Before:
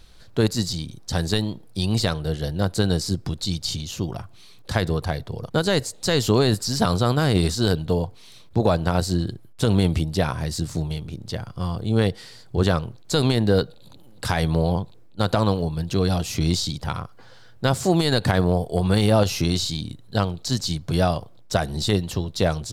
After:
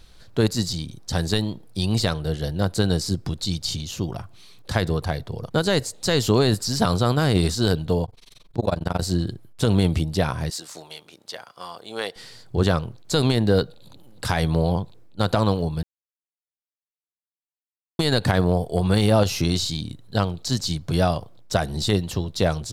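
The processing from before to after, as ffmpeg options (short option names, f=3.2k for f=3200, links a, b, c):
-filter_complex "[0:a]asettb=1/sr,asplit=3[a][b][c];[a]atrim=end=8.054[d];[b]atrim=start=8.05:end=9.02,asetpts=PTS-STARTPTS,afade=t=in:d=0.004:c=qsin,afade=t=out:st=0.966:d=0.004:c=qsin,tremolo=f=22:d=0.974[e];[c]atrim=start=9.016[f];[d][e]acrossfade=d=0.004:c1=hsin:c2=qsin[g];[g][f]acrossfade=d=0.004:c1=qsin:c2=hsin,asettb=1/sr,asplit=3[h][i][j];[h]atrim=end=10.504[k];[i]atrim=start=10.5:end=12.16,asetpts=PTS-STARTPTS,afade=t=in:d=0.004:c=qsin,afade=t=out:st=1.656:d=0.004:c=qsin,highpass=660[l];[j]atrim=start=12.156[m];[k][l]acrossfade=d=0.004:c1=hsin:c2=qsin[n];[n][m]acrossfade=d=0.004:c1=qsin:c2=hsin,asplit=3[o][p][q];[o]atrim=end=15.83,asetpts=PTS-STARTPTS,afade=t=out:st=15.826:d=0.004:c=hsin[r];[p]atrim=start=15.83:end=17.99,asetpts=PTS-STARTPTS,volume=0[s];[q]atrim=start=17.99,asetpts=PTS-STARTPTS,afade=t=in:d=0.004:c=hsin[t];[r][s][t]concat=n=3:v=0:a=1"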